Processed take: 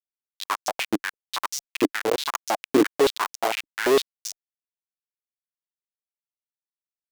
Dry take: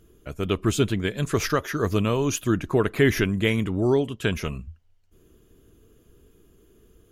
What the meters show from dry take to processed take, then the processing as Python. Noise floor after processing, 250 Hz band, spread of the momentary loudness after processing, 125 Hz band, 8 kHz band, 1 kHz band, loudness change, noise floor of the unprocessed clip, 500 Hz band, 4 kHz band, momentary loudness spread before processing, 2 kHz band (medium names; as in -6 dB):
under -85 dBFS, -3.5 dB, 13 LU, -22.5 dB, +0.5 dB, +5.0 dB, -1.0 dB, -60 dBFS, -0.5 dB, +2.0 dB, 9 LU, -1.0 dB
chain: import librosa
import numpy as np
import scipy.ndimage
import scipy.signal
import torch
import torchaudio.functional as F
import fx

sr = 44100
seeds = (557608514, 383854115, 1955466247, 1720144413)

y = fx.schmitt(x, sr, flips_db=-19.0)
y = fx.filter_held_highpass(y, sr, hz=8.8, low_hz=300.0, high_hz=5800.0)
y = F.gain(torch.from_numpy(y), 6.0).numpy()